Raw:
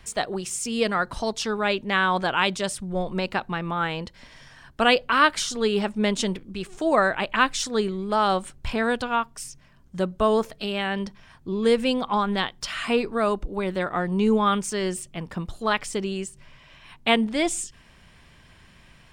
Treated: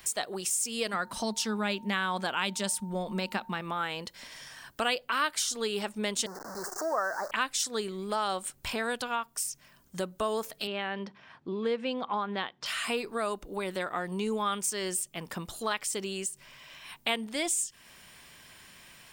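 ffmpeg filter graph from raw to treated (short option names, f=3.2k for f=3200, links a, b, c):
-filter_complex "[0:a]asettb=1/sr,asplit=3[a][b][c];[a]atrim=end=0.934[d];[b]atrim=start=0.93:end=3.61,asetpts=PTS-STARTPTS,afade=t=in:d=0.004:c=qsin,afade=t=out:st=2.676:d=0.004:c=qsin,equalizer=f=210:w=3.8:g=12.5,aeval=exprs='val(0)+0.00631*sin(2*PI*910*n/s)':c=same[e];[c]atrim=start=3.606[f];[d][e]acrossfade=d=0.004:c1=hsin:c2=qsin[g];[g][f]acrossfade=d=0.004:c1=qsin:c2=hsin,asettb=1/sr,asplit=3[h][i][j];[h]atrim=end=6.264[k];[i]atrim=start=6.26:end=7.31,asetpts=PTS-STARTPTS,afade=t=in:d=0.004:c=qsin,afade=t=out:st=1.046:d=0.004:c=qsin,aeval=exprs='val(0)+0.5*0.0501*sgn(val(0))':c=same,asuperstop=centerf=2900:order=8:qfactor=0.83,acrossover=split=480 5400:gain=0.224 1 0.0891[l][m][n];[l][m][n]amix=inputs=3:normalize=0[o];[j]atrim=start=7.306[p];[k][o]acrossfade=d=0.004:c1=hsin:c2=qsin[q];[q][p]acrossfade=d=0.004:c1=qsin:c2=hsin,asettb=1/sr,asplit=3[r][s][t];[r]atrim=end=10.674[u];[s]atrim=start=10.67:end=12.66,asetpts=PTS-STARTPTS,afade=t=in:d=0.004:c=qsin,afade=t=out:st=1.986:d=0.004:c=qsin,highpass=110,lowpass=4.4k,aemphasis=mode=reproduction:type=75fm[v];[t]atrim=start=12.656[w];[u][v]acrossfade=d=0.004:c1=hsin:c2=qsin[x];[x][w]acrossfade=d=0.004:c1=qsin:c2=hsin,aemphasis=mode=production:type=bsi,acompressor=threshold=-34dB:ratio=2"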